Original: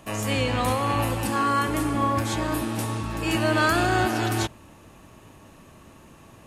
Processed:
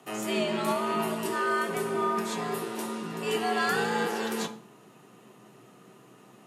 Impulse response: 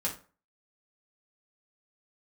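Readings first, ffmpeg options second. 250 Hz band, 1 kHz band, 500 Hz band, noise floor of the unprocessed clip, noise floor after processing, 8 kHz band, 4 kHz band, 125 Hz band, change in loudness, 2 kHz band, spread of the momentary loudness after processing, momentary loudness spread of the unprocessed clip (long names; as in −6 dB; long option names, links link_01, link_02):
−6.5 dB, −5.0 dB, −1.5 dB, −50 dBFS, −55 dBFS, −5.5 dB, −4.5 dB, −15.5 dB, −5.0 dB, −4.5 dB, 8 LU, 7 LU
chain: -filter_complex "[0:a]afreqshift=110,asplit=2[link_01][link_02];[1:a]atrim=start_sample=2205,asetrate=31311,aresample=44100[link_03];[link_02][link_03]afir=irnorm=-1:irlink=0,volume=-10.5dB[link_04];[link_01][link_04]amix=inputs=2:normalize=0,volume=-8dB"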